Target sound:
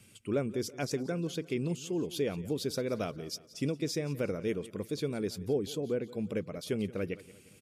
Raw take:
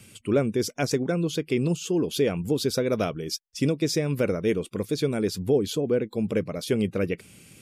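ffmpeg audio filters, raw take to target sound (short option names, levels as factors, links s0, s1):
-af "aecho=1:1:176|352|528|704:0.119|0.0535|0.0241|0.0108,volume=0.376"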